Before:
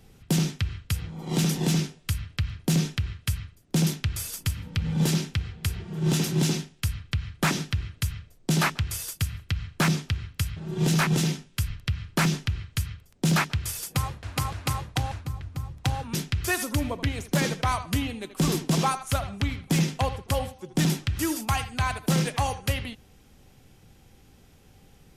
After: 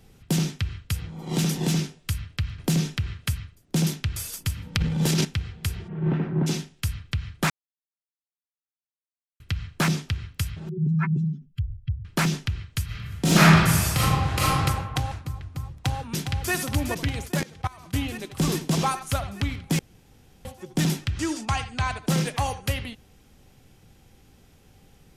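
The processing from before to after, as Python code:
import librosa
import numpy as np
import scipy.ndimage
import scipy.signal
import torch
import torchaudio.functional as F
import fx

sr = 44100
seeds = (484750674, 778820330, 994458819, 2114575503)

y = fx.band_squash(x, sr, depth_pct=40, at=(2.58, 3.33))
y = fx.transient(y, sr, attack_db=-2, sustain_db=11, at=(4.75, 5.25))
y = fx.lowpass(y, sr, hz=fx.line((5.87, 2500.0), (6.46, 1500.0)), slope=24, at=(5.87, 6.46), fade=0.02)
y = fx.spec_expand(y, sr, power=2.7, at=(10.69, 12.05))
y = fx.reverb_throw(y, sr, start_s=12.85, length_s=1.74, rt60_s=1.4, drr_db=-9.0)
y = fx.echo_throw(y, sr, start_s=15.74, length_s=0.79, ms=410, feedback_pct=75, wet_db=-6.5)
y = fx.level_steps(y, sr, step_db=23, at=(17.27, 17.93), fade=0.02)
y = fx.lowpass(y, sr, hz=8100.0, slope=24, at=(21.1, 22.09))
y = fx.edit(y, sr, fx.silence(start_s=7.5, length_s=1.9),
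    fx.room_tone_fill(start_s=19.79, length_s=0.66), tone=tone)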